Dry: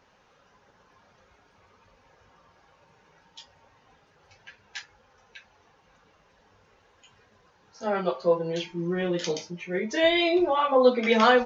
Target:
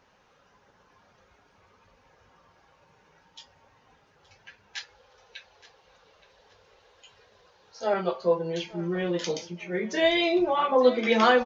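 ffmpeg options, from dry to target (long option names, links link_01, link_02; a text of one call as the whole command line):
ffmpeg -i in.wav -filter_complex "[0:a]asettb=1/sr,asplit=3[link_01][link_02][link_03];[link_01]atrim=end=4.774[link_04];[link_02]atrim=start=4.77:end=7.94,asetpts=PTS-STARTPTS,afade=type=in:duration=0.004:curve=qsin,afade=type=out:start_time=3.166:duration=0.004:curve=qsin,equalizer=frequency=125:width_type=o:width=1:gain=-3,equalizer=frequency=250:width_type=o:width=1:gain=-7,equalizer=frequency=500:width_type=o:width=1:gain=7,equalizer=frequency=4000:width_type=o:width=1:gain=8[link_05];[link_03]atrim=start=7.936[link_06];[link_04][link_05]acrossfade=duration=0.004:curve1=hsin:curve2=qsin[link_07];[link_07][link_06]acrossfade=duration=0.004:curve1=qsin:curve2=hsin,aecho=1:1:871|1742|2613:0.126|0.039|0.0121,volume=-1dB" out.wav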